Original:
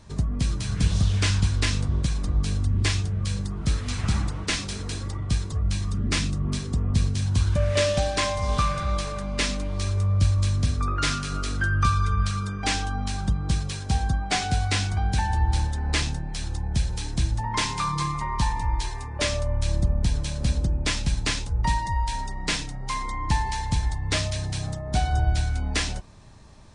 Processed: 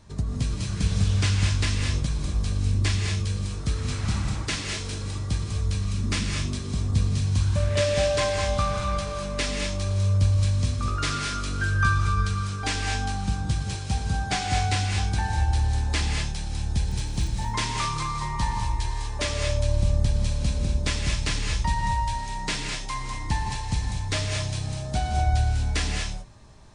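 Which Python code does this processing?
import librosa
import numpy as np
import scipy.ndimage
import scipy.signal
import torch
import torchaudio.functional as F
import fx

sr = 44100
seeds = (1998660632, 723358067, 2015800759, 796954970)

y = fx.dmg_crackle(x, sr, seeds[0], per_s=fx.line((16.78, 24.0), (17.35, 68.0)), level_db=-31.0, at=(16.78, 17.35), fade=0.02)
y = fx.rev_gated(y, sr, seeds[1], gate_ms=260, shape='rising', drr_db=1.5)
y = y * 10.0 ** (-3.0 / 20.0)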